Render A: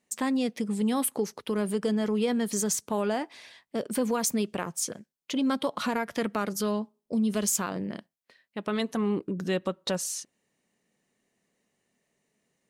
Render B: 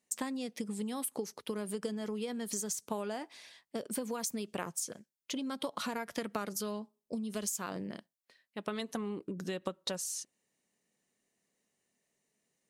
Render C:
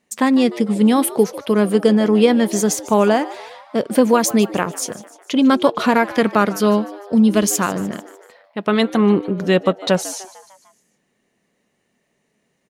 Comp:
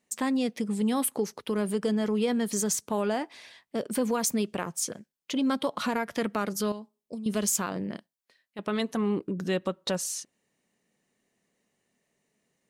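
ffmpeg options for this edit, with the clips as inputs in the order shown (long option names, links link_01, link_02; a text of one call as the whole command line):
ffmpeg -i take0.wav -i take1.wav -filter_complex "[1:a]asplit=2[link_01][link_02];[0:a]asplit=3[link_03][link_04][link_05];[link_03]atrim=end=6.722[link_06];[link_01]atrim=start=6.718:end=7.262[link_07];[link_04]atrim=start=7.258:end=7.972[link_08];[link_02]atrim=start=7.968:end=8.592[link_09];[link_05]atrim=start=8.588[link_10];[link_06][link_07]acrossfade=duration=0.004:curve1=hsin:curve2=hsin[link_11];[link_11][link_08]acrossfade=duration=0.004:curve1=hsin:curve2=hsin[link_12];[link_12][link_09]acrossfade=duration=0.004:curve1=hsin:curve2=hsin[link_13];[link_13][link_10]acrossfade=duration=0.004:curve1=hsin:curve2=hsin" out.wav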